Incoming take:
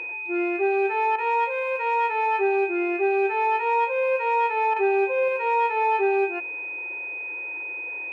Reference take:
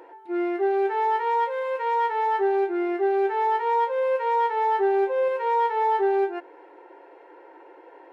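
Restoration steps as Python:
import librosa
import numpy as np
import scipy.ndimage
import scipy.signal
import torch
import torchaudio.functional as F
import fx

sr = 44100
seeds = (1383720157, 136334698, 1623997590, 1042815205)

y = fx.notch(x, sr, hz=2500.0, q=30.0)
y = fx.fix_interpolate(y, sr, at_s=(1.16, 4.74), length_ms=21.0)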